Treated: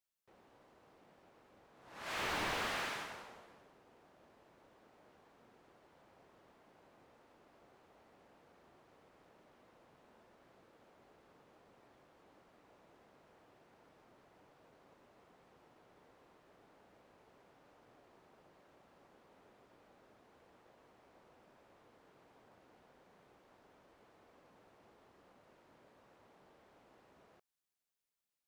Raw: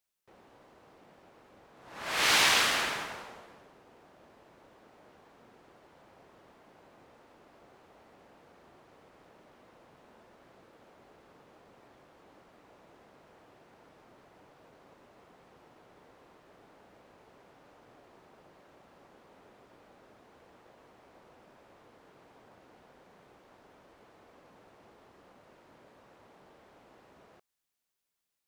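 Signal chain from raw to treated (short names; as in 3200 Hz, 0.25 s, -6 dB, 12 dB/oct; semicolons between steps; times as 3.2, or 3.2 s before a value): slew limiter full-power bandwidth 68 Hz; gain -7 dB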